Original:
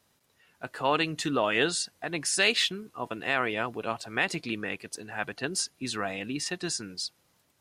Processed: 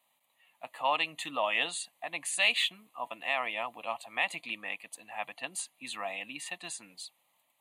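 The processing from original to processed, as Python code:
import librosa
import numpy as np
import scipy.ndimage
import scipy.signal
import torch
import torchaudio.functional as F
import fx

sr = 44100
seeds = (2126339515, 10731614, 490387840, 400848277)

y = scipy.signal.sosfilt(scipy.signal.butter(2, 420.0, 'highpass', fs=sr, output='sos'), x)
y = fx.fixed_phaser(y, sr, hz=1500.0, stages=6)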